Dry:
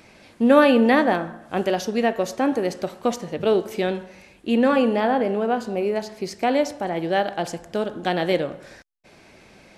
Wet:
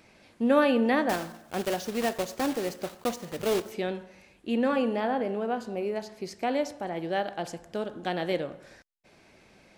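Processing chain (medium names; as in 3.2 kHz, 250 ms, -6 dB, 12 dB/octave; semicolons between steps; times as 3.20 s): 1.09–3.73 s: block-companded coder 3-bit; trim -7.5 dB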